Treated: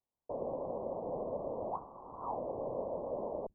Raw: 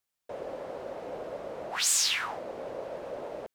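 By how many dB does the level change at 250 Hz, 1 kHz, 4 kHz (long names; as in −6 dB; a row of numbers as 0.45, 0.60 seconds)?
+2.0 dB, −1.5 dB, below −40 dB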